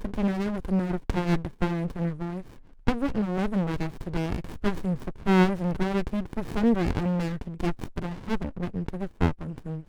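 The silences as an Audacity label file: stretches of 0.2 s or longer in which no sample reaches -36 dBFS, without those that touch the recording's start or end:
2.420000	2.870000	silence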